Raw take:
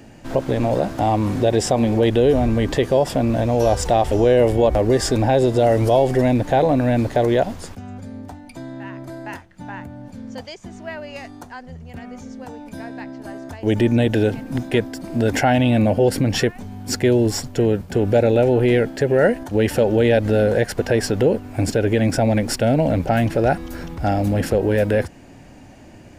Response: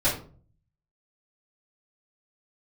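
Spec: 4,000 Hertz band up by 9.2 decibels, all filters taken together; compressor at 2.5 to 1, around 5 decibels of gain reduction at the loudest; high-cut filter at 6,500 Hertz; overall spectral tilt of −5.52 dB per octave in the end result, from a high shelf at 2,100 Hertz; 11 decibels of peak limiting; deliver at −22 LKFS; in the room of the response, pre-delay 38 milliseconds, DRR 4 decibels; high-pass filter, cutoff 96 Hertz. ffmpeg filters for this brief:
-filter_complex "[0:a]highpass=96,lowpass=6500,highshelf=frequency=2100:gain=7,equalizer=frequency=4000:width_type=o:gain=6,acompressor=threshold=-18dB:ratio=2.5,alimiter=limit=-15dB:level=0:latency=1,asplit=2[link_01][link_02];[1:a]atrim=start_sample=2205,adelay=38[link_03];[link_02][link_03]afir=irnorm=-1:irlink=0,volume=-17dB[link_04];[link_01][link_04]amix=inputs=2:normalize=0,volume=1.5dB"

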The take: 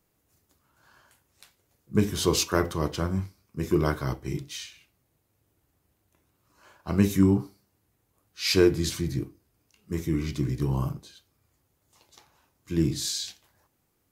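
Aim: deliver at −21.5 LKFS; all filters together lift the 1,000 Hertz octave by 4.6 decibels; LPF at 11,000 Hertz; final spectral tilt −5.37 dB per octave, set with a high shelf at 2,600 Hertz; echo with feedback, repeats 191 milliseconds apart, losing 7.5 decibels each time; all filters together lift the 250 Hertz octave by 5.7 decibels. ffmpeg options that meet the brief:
ffmpeg -i in.wav -af "lowpass=11000,equalizer=frequency=250:width_type=o:gain=8,equalizer=frequency=1000:width_type=o:gain=4.5,highshelf=frequency=2600:gain=4,aecho=1:1:191|382|573|764|955:0.422|0.177|0.0744|0.0312|0.0131,volume=0.5dB" out.wav

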